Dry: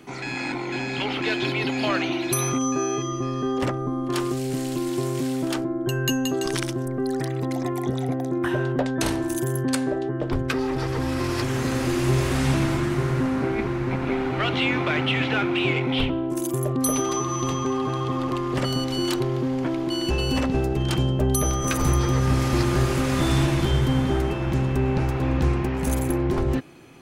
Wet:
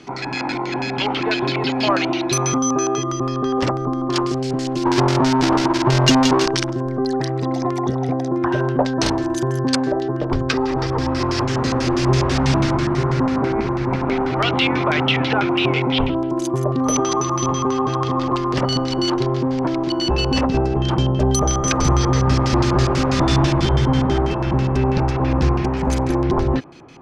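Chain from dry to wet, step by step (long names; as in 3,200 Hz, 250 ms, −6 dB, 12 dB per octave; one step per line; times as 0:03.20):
0:04.85–0:06.46: each half-wave held at its own peak
auto-filter low-pass square 6.1 Hz 990–5,300 Hz
level +4 dB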